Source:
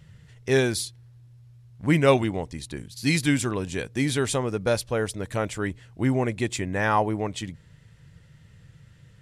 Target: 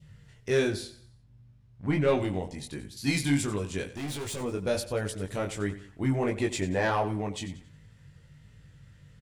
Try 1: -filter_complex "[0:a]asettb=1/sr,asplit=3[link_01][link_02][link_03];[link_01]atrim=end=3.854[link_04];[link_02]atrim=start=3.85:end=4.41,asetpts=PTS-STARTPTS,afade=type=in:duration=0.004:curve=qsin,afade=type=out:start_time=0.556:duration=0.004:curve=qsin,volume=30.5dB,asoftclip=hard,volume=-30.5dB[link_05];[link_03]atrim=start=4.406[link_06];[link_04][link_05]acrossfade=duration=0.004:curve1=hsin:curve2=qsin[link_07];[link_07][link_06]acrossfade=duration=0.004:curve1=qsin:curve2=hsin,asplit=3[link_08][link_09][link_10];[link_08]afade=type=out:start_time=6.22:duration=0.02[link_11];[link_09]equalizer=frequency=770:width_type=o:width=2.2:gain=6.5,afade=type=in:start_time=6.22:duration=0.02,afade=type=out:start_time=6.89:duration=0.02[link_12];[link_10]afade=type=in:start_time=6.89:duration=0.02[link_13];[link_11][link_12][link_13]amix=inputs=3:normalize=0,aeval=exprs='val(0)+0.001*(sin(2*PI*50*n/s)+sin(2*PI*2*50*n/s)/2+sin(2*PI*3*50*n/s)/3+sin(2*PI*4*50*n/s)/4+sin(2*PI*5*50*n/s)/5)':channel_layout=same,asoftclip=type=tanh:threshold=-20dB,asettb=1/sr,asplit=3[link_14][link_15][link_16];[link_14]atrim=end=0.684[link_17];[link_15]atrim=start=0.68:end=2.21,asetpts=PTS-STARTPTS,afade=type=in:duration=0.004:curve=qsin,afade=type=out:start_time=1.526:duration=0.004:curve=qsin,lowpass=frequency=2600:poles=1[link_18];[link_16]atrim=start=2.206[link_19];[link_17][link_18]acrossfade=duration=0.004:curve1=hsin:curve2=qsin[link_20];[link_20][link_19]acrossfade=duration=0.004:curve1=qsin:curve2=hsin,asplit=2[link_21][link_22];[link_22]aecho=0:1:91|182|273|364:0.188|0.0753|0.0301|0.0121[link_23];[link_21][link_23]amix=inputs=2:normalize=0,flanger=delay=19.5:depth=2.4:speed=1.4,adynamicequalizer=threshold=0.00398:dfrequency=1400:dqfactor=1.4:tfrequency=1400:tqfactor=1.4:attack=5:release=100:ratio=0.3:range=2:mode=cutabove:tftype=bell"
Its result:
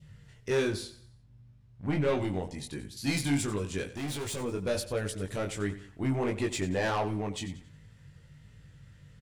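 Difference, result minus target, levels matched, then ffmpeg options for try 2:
soft clipping: distortion +6 dB
-filter_complex "[0:a]asettb=1/sr,asplit=3[link_01][link_02][link_03];[link_01]atrim=end=3.854[link_04];[link_02]atrim=start=3.85:end=4.41,asetpts=PTS-STARTPTS,afade=type=in:duration=0.004:curve=qsin,afade=type=out:start_time=0.556:duration=0.004:curve=qsin,volume=30.5dB,asoftclip=hard,volume=-30.5dB[link_05];[link_03]atrim=start=4.406[link_06];[link_04][link_05]acrossfade=duration=0.004:curve1=hsin:curve2=qsin[link_07];[link_07][link_06]acrossfade=duration=0.004:curve1=qsin:curve2=hsin,asplit=3[link_08][link_09][link_10];[link_08]afade=type=out:start_time=6.22:duration=0.02[link_11];[link_09]equalizer=frequency=770:width_type=o:width=2.2:gain=6.5,afade=type=in:start_time=6.22:duration=0.02,afade=type=out:start_time=6.89:duration=0.02[link_12];[link_10]afade=type=in:start_time=6.89:duration=0.02[link_13];[link_11][link_12][link_13]amix=inputs=3:normalize=0,aeval=exprs='val(0)+0.001*(sin(2*PI*50*n/s)+sin(2*PI*2*50*n/s)/2+sin(2*PI*3*50*n/s)/3+sin(2*PI*4*50*n/s)/4+sin(2*PI*5*50*n/s)/5)':channel_layout=same,asoftclip=type=tanh:threshold=-13.5dB,asettb=1/sr,asplit=3[link_14][link_15][link_16];[link_14]atrim=end=0.684[link_17];[link_15]atrim=start=0.68:end=2.21,asetpts=PTS-STARTPTS,afade=type=in:duration=0.004:curve=qsin,afade=type=out:start_time=1.526:duration=0.004:curve=qsin,lowpass=frequency=2600:poles=1[link_18];[link_16]atrim=start=2.206[link_19];[link_17][link_18]acrossfade=duration=0.004:curve1=hsin:curve2=qsin[link_20];[link_20][link_19]acrossfade=duration=0.004:curve1=qsin:curve2=hsin,asplit=2[link_21][link_22];[link_22]aecho=0:1:91|182|273|364:0.188|0.0753|0.0301|0.0121[link_23];[link_21][link_23]amix=inputs=2:normalize=0,flanger=delay=19.5:depth=2.4:speed=1.4,adynamicequalizer=threshold=0.00398:dfrequency=1400:dqfactor=1.4:tfrequency=1400:tqfactor=1.4:attack=5:release=100:ratio=0.3:range=2:mode=cutabove:tftype=bell"

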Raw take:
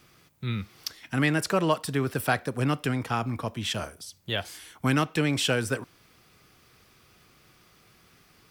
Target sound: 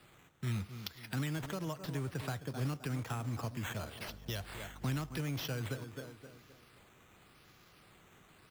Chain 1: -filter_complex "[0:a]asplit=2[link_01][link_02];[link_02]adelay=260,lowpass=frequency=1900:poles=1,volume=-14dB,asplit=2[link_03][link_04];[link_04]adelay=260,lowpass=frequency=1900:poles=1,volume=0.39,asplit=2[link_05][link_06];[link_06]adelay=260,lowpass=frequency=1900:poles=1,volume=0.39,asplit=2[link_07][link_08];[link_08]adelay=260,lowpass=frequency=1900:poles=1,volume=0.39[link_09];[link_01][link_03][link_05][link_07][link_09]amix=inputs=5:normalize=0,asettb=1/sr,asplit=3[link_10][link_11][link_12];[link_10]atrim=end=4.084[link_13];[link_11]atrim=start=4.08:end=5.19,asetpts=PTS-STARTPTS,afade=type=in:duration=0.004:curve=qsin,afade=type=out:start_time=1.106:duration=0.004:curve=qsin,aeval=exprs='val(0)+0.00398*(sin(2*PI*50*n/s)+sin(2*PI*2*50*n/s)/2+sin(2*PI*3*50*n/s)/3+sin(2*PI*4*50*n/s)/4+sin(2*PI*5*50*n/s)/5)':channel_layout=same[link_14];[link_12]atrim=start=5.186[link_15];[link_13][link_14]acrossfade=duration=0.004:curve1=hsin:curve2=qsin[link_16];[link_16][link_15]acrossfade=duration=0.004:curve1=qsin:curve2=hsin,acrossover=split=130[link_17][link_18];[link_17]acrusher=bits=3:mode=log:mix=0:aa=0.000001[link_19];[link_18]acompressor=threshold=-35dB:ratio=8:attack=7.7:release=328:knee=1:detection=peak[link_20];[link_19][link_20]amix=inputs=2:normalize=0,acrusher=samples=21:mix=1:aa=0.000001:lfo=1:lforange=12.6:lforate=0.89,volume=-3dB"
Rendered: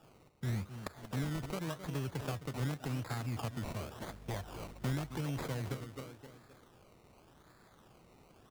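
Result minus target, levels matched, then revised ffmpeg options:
sample-and-hold swept by an LFO: distortion +5 dB
-filter_complex "[0:a]asplit=2[link_01][link_02];[link_02]adelay=260,lowpass=frequency=1900:poles=1,volume=-14dB,asplit=2[link_03][link_04];[link_04]adelay=260,lowpass=frequency=1900:poles=1,volume=0.39,asplit=2[link_05][link_06];[link_06]adelay=260,lowpass=frequency=1900:poles=1,volume=0.39,asplit=2[link_07][link_08];[link_08]adelay=260,lowpass=frequency=1900:poles=1,volume=0.39[link_09];[link_01][link_03][link_05][link_07][link_09]amix=inputs=5:normalize=0,asettb=1/sr,asplit=3[link_10][link_11][link_12];[link_10]atrim=end=4.084[link_13];[link_11]atrim=start=4.08:end=5.19,asetpts=PTS-STARTPTS,afade=type=in:duration=0.004:curve=qsin,afade=type=out:start_time=1.106:duration=0.004:curve=qsin,aeval=exprs='val(0)+0.00398*(sin(2*PI*50*n/s)+sin(2*PI*2*50*n/s)/2+sin(2*PI*3*50*n/s)/3+sin(2*PI*4*50*n/s)/4+sin(2*PI*5*50*n/s)/5)':channel_layout=same[link_14];[link_12]atrim=start=5.186[link_15];[link_13][link_14]acrossfade=duration=0.004:curve1=hsin:curve2=qsin[link_16];[link_16][link_15]acrossfade=duration=0.004:curve1=qsin:curve2=hsin,acrossover=split=130[link_17][link_18];[link_17]acrusher=bits=3:mode=log:mix=0:aa=0.000001[link_19];[link_18]acompressor=threshold=-35dB:ratio=8:attack=7.7:release=328:knee=1:detection=peak[link_20];[link_19][link_20]amix=inputs=2:normalize=0,acrusher=samples=7:mix=1:aa=0.000001:lfo=1:lforange=4.2:lforate=0.89,volume=-3dB"

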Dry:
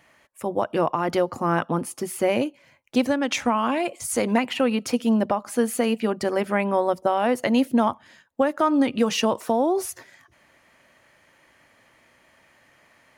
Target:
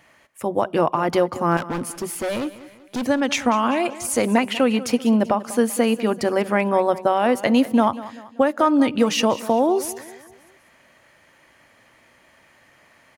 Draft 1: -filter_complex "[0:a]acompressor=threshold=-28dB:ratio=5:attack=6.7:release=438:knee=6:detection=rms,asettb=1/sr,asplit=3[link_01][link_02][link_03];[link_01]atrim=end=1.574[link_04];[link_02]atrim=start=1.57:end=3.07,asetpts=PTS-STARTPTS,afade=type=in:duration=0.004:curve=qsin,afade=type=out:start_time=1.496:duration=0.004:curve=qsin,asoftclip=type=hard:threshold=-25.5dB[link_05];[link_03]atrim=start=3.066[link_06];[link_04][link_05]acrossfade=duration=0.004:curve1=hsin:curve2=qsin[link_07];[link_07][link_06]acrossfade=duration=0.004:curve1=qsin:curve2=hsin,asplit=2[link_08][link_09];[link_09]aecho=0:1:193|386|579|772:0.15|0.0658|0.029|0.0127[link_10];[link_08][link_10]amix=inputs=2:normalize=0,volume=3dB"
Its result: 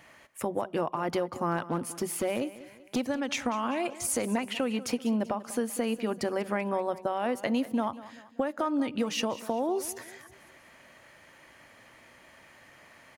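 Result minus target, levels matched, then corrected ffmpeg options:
downward compressor: peak gain reduction +13 dB
-filter_complex "[0:a]asettb=1/sr,asplit=3[link_01][link_02][link_03];[link_01]atrim=end=1.574[link_04];[link_02]atrim=start=1.57:end=3.07,asetpts=PTS-STARTPTS,afade=type=in:duration=0.004:curve=qsin,afade=type=out:start_time=1.496:duration=0.004:curve=qsin,asoftclip=type=hard:threshold=-25.5dB[link_05];[link_03]atrim=start=3.066[link_06];[link_04][link_05]acrossfade=duration=0.004:curve1=hsin:curve2=qsin[link_07];[link_07][link_06]acrossfade=duration=0.004:curve1=qsin:curve2=hsin,asplit=2[link_08][link_09];[link_09]aecho=0:1:193|386|579|772:0.15|0.0658|0.029|0.0127[link_10];[link_08][link_10]amix=inputs=2:normalize=0,volume=3dB"

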